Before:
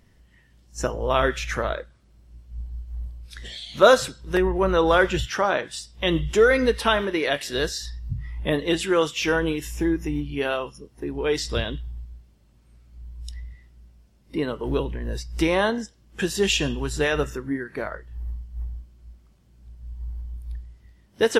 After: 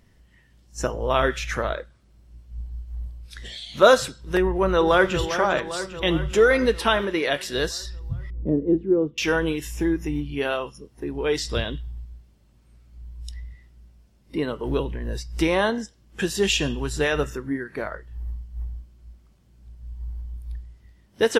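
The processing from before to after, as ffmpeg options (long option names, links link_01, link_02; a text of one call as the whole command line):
ffmpeg -i in.wav -filter_complex "[0:a]asplit=2[link_01][link_02];[link_02]afade=type=in:start_time=4.4:duration=0.01,afade=type=out:start_time=5.19:duration=0.01,aecho=0:1:400|800|1200|1600|2000|2400|2800|3200|3600:0.316228|0.205548|0.133606|0.0868441|0.0564486|0.0366916|0.0238495|0.0155022|0.0100764[link_03];[link_01][link_03]amix=inputs=2:normalize=0,asettb=1/sr,asplit=3[link_04][link_05][link_06];[link_04]atrim=end=8.304[link_07];[link_05]atrim=start=8.3:end=9.18,asetpts=PTS-STARTPTS,afade=type=in:duration=0.004:curve=qsin,afade=type=out:start_time=0.876:duration=0.004:curve=qsin,lowpass=frequency=330:width_type=q:width=1.7[link_08];[link_06]atrim=start=9.176[link_09];[link_07][link_08]acrossfade=duration=0.004:curve1=hsin:curve2=qsin[link_10];[link_10][link_09]acrossfade=duration=0.004:curve1=qsin:curve2=hsin" out.wav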